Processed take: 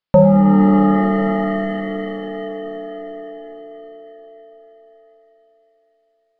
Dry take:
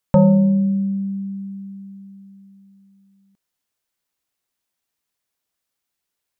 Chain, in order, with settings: downsampling 11025 Hz; dynamic EQ 620 Hz, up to +5 dB, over -32 dBFS, Q 1.8; in parallel at -7 dB: backlash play -29 dBFS; on the sum: notches 50/100/150/200 Hz; shimmer reverb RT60 4 s, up +7 st, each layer -2 dB, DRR 6 dB; gain -2 dB

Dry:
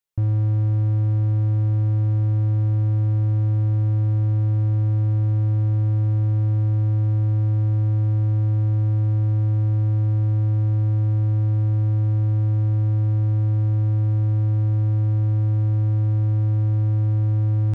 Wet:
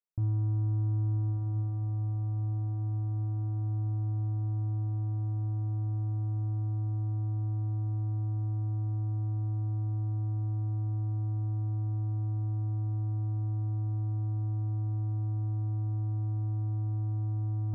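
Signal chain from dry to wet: LPF 1200 Hz 24 dB/oct; notch 540 Hz, Q 12; diffused feedback echo 1.348 s, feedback 48%, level -7 dB; on a send at -12 dB: reverb RT60 0.40 s, pre-delay 3 ms; on the sum: gain -8.5 dB

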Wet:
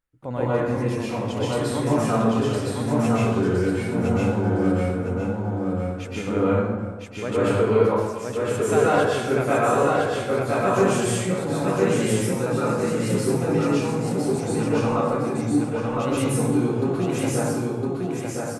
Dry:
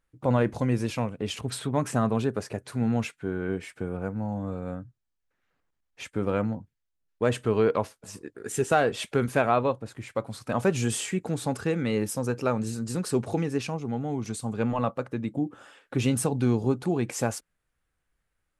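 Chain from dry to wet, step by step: vocal rider 2 s; on a send: feedback echo 1.01 s, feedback 29%, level -3 dB; on the sum: plate-style reverb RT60 1.3 s, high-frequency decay 0.55×, pre-delay 0.11 s, DRR -9 dB; gain -6.5 dB

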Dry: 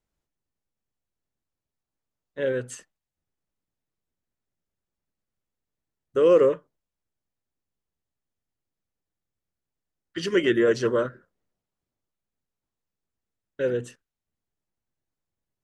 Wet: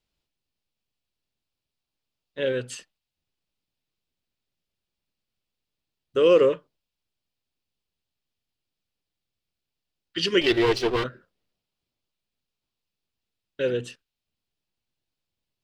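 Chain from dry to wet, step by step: 10.41–11.04 minimum comb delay 2.6 ms; band shelf 3500 Hz +9.5 dB 1.3 oct

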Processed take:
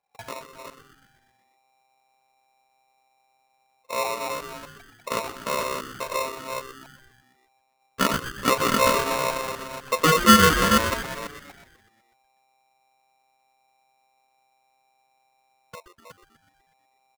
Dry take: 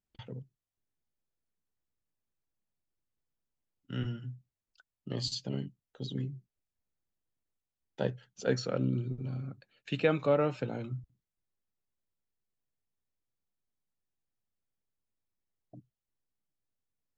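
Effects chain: reverse delay 0.245 s, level -5 dB; LPF 1400 Hz 24 dB/oct; comb 3.3 ms, depth 78%; frequency-shifting echo 0.123 s, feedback 60%, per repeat +130 Hz, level -11 dB; polarity switched at an audio rate 790 Hz; gain +8.5 dB

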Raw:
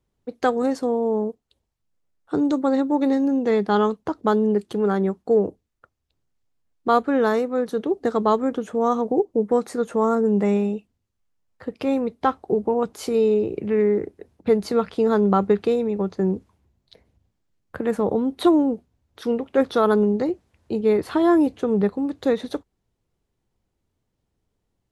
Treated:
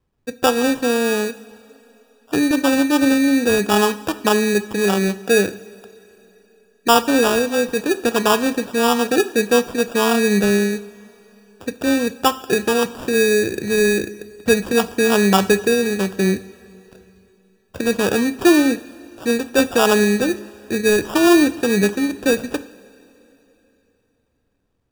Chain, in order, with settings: sample-and-hold 21×; two-slope reverb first 0.58 s, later 3.4 s, from -15 dB, DRR 12 dB; gain +3.5 dB

